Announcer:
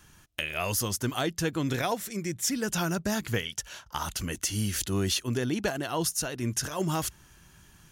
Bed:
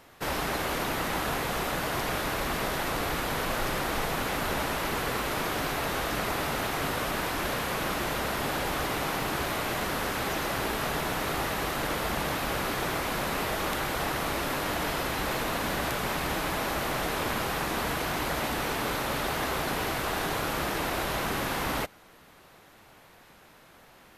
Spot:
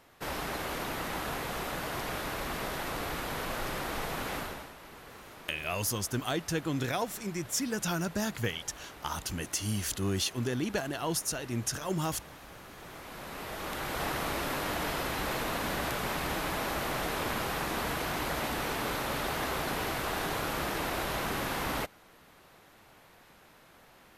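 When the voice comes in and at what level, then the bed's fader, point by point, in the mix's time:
5.10 s, -3.0 dB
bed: 4.38 s -5.5 dB
4.74 s -19.5 dB
12.69 s -19.5 dB
14.04 s -3 dB

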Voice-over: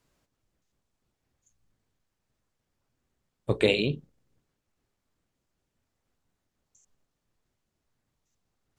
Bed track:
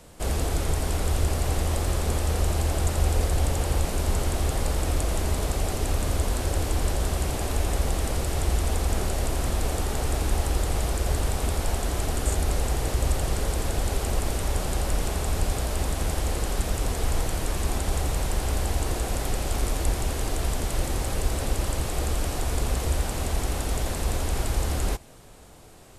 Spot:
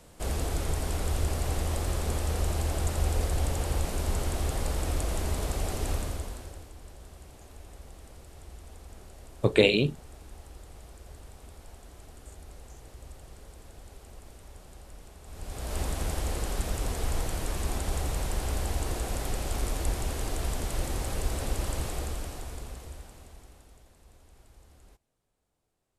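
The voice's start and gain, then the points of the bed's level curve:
5.95 s, +2.5 dB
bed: 5.94 s -4.5 dB
6.73 s -22.5 dB
15.21 s -22.5 dB
15.76 s -4.5 dB
21.85 s -4.5 dB
23.89 s -30.5 dB

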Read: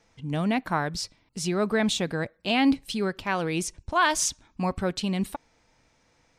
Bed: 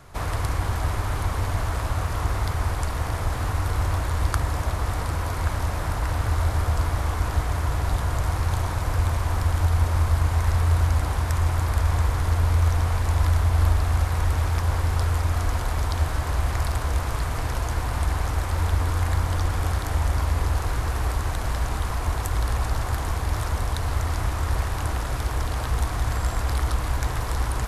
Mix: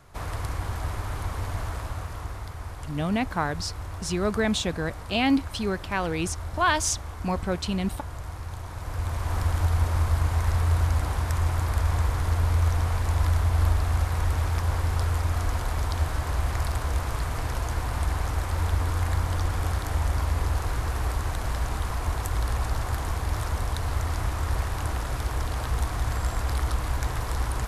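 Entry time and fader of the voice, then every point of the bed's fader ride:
2.65 s, -0.5 dB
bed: 1.67 s -5.5 dB
2.50 s -12 dB
8.62 s -12 dB
9.38 s -2.5 dB

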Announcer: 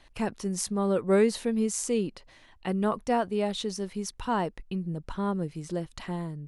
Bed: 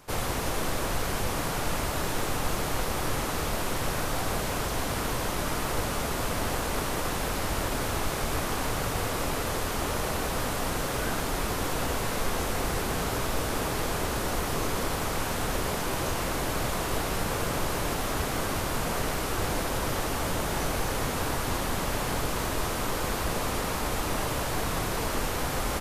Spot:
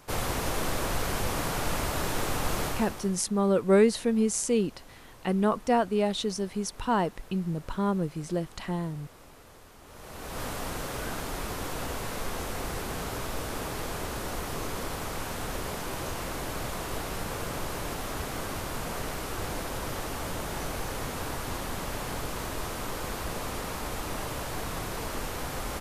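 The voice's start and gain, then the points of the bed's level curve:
2.60 s, +2.0 dB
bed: 2.66 s -0.5 dB
3.26 s -22.5 dB
9.82 s -22.5 dB
10.42 s -5 dB

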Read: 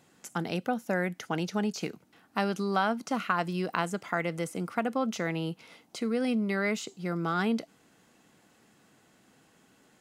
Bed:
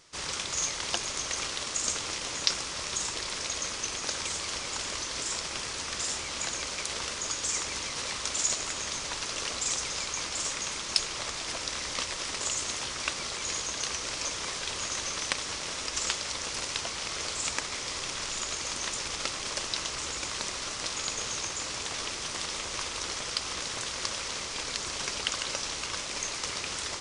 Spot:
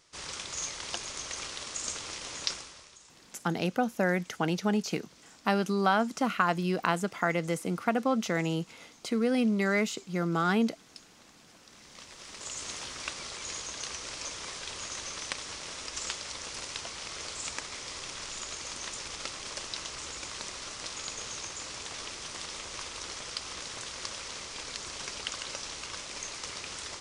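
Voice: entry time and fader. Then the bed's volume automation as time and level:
3.10 s, +2.0 dB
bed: 2.51 s -5.5 dB
3.00 s -24 dB
11.58 s -24 dB
12.68 s -5.5 dB

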